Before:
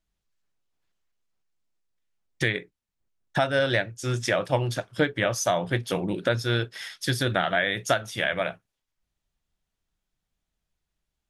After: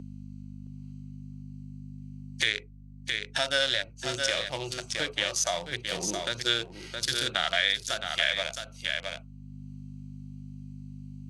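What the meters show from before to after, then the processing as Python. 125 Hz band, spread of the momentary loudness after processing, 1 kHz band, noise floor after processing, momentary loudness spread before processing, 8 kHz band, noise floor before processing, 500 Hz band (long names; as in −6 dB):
−10.5 dB, 18 LU, −6.5 dB, −48 dBFS, 6 LU, +3.0 dB, −84 dBFS, −8.0 dB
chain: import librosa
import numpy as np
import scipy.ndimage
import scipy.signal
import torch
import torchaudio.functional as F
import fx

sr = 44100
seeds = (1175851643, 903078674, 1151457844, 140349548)

p1 = fx.wiener(x, sr, points=25)
p2 = fx.weighting(p1, sr, curve='ITU-R 468')
p3 = fx.hpss(p2, sr, part='percussive', gain_db=-15)
p4 = fx.high_shelf(p3, sr, hz=4600.0, db=8.5)
p5 = fx.add_hum(p4, sr, base_hz=50, snr_db=17)
p6 = p5 + fx.echo_single(p5, sr, ms=667, db=-9.5, dry=0)
p7 = fx.band_squash(p6, sr, depth_pct=70)
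y = p7 * librosa.db_to_amplitude(2.5)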